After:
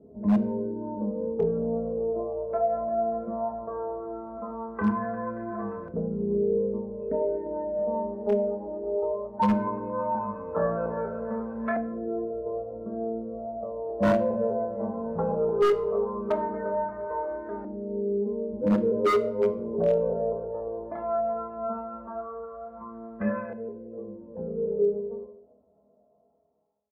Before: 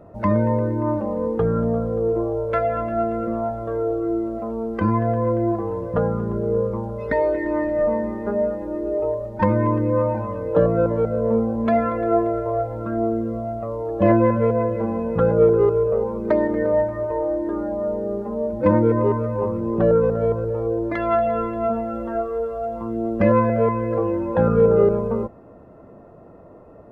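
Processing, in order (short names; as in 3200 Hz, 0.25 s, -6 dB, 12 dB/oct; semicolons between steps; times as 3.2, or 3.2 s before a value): ending faded out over 7.87 s; HPF 47 Hz 24 dB/oct; high shelf 2600 Hz +5.5 dB; notch 3000 Hz, Q 10; comb 4.6 ms, depth 67%; in parallel at -2 dB: limiter -12.5 dBFS, peak gain reduction 10 dB; on the sum: resonator bank C#2 minor, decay 0.48 s; LFO low-pass saw up 0.17 Hz 350–1700 Hz; wavefolder -16 dBFS; reverb RT60 0.70 s, pre-delay 4 ms, DRR 12 dB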